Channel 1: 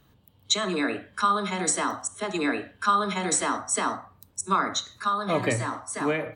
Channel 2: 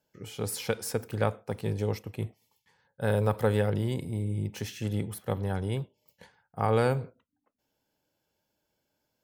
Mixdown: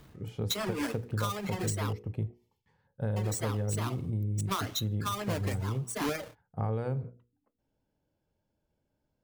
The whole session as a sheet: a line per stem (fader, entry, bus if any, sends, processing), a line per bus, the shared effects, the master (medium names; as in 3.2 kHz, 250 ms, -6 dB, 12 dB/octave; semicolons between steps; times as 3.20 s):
+2.0 dB, 0.00 s, muted 1.93–3.16 s, no send, square wave that keeps the level; reverb removal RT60 1.8 s; auto duck -7 dB, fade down 0.30 s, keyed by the second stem
-4.5 dB, 0.00 s, no send, tilt EQ -3.5 dB/octave; hum notches 60/120/180/240/300/360/420/480 Hz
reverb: none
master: compression, threshold -29 dBFS, peak gain reduction 12 dB